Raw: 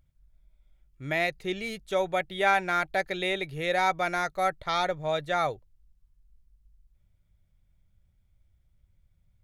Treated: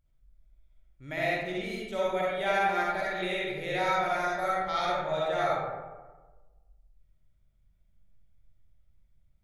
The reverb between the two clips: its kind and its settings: algorithmic reverb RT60 1.3 s, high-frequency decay 0.45×, pre-delay 20 ms, DRR -6.5 dB; trim -9 dB

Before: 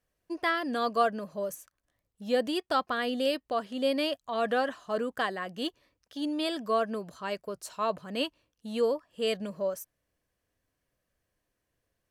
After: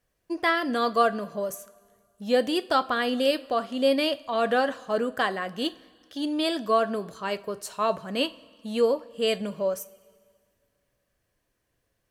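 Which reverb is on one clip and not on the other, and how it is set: two-slope reverb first 0.29 s, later 2 s, from -18 dB, DRR 11.5 dB; trim +4.5 dB

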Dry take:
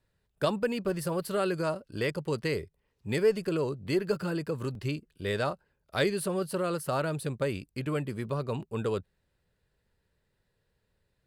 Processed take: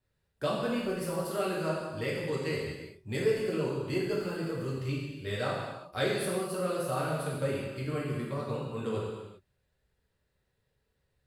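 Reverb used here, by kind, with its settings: gated-style reverb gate 430 ms falling, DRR -6 dB; trim -8 dB

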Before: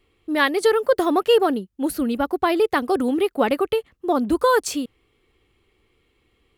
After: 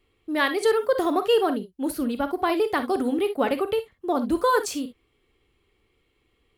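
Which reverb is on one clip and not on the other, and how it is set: gated-style reverb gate 80 ms rising, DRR 9 dB; trim -4 dB

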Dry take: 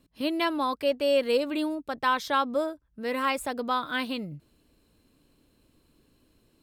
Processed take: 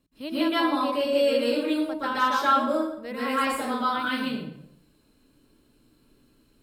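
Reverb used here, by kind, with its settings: plate-style reverb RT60 0.72 s, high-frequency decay 0.75×, pre-delay 110 ms, DRR -9 dB; trim -7 dB

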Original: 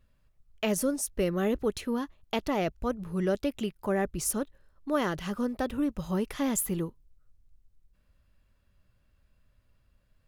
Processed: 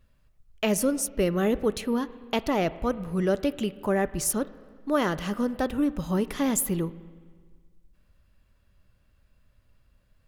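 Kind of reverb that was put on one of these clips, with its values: spring tank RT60 1.7 s, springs 34/42/48 ms, chirp 45 ms, DRR 16 dB; trim +3.5 dB

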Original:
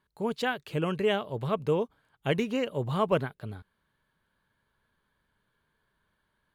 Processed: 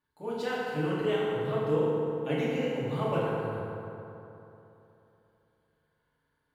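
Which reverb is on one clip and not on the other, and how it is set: FDN reverb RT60 3.1 s, high-frequency decay 0.5×, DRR -9 dB; trim -11.5 dB

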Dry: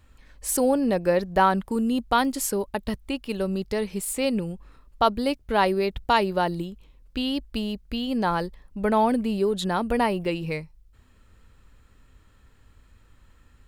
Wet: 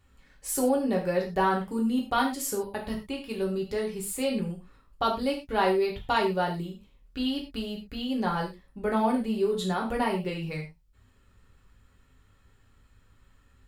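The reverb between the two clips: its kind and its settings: gated-style reverb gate 140 ms falling, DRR -1.5 dB; trim -7.5 dB

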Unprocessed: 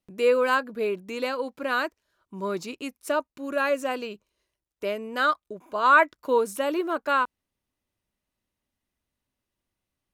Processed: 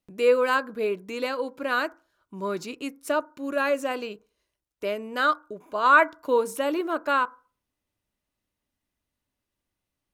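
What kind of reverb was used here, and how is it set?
FDN reverb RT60 0.38 s, low-frequency decay 0.95×, high-frequency decay 0.3×, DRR 16 dB

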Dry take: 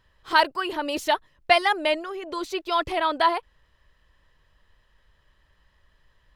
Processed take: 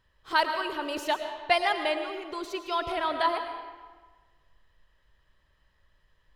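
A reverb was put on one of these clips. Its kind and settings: algorithmic reverb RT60 1.4 s, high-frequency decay 0.75×, pre-delay 70 ms, DRR 6.5 dB; trim -5.5 dB

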